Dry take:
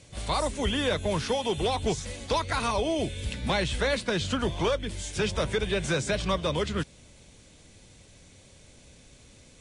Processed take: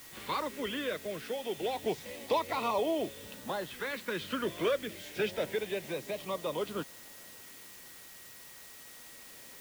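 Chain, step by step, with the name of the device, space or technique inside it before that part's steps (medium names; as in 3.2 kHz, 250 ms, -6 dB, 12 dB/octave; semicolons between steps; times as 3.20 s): shortwave radio (band-pass 290–2700 Hz; tremolo 0.41 Hz, depth 53%; LFO notch saw up 0.27 Hz 600–2400 Hz; whistle 1.9 kHz -60 dBFS; white noise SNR 15 dB)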